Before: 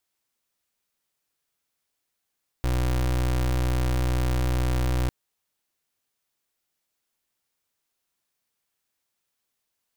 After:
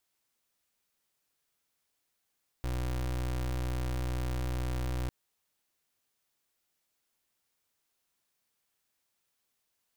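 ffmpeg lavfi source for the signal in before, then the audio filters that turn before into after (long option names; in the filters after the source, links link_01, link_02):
-f lavfi -i "aevalsrc='0.0668*(2*lt(mod(62.2*t,1),0.29)-1)':duration=2.45:sample_rate=44100"
-af "alimiter=level_in=8.5dB:limit=-24dB:level=0:latency=1:release=48,volume=-8.5dB"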